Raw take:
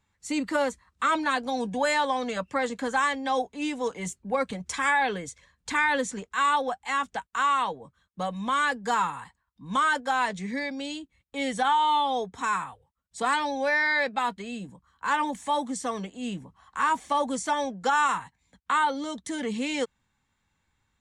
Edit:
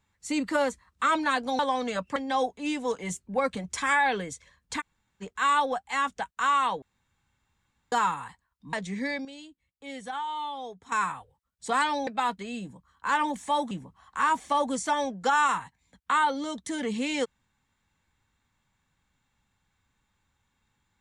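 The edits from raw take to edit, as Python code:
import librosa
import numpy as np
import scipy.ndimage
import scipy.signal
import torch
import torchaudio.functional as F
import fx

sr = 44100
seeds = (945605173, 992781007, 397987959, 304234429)

y = fx.edit(x, sr, fx.cut(start_s=1.59, length_s=0.41),
    fx.cut(start_s=2.57, length_s=0.55),
    fx.room_tone_fill(start_s=5.76, length_s=0.42, crossfade_s=0.04),
    fx.room_tone_fill(start_s=7.78, length_s=1.1),
    fx.cut(start_s=9.69, length_s=0.56),
    fx.clip_gain(start_s=10.77, length_s=1.67, db=-10.5),
    fx.cut(start_s=13.59, length_s=0.47),
    fx.cut(start_s=15.7, length_s=0.61), tone=tone)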